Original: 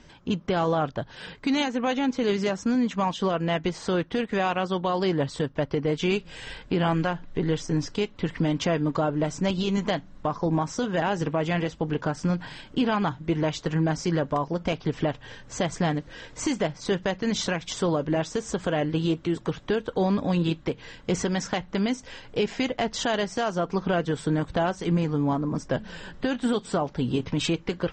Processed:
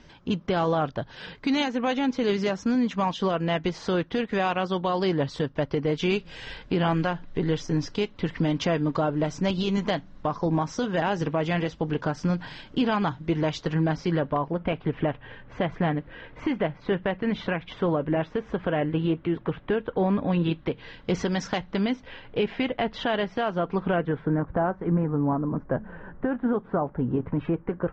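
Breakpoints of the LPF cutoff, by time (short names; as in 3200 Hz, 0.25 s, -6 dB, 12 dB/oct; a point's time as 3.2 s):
LPF 24 dB/oct
13.56 s 6000 Hz
14.58 s 2800 Hz
20.1 s 2800 Hz
21.54 s 5900 Hz
22.06 s 3400 Hz
23.75 s 3400 Hz
24.42 s 1600 Hz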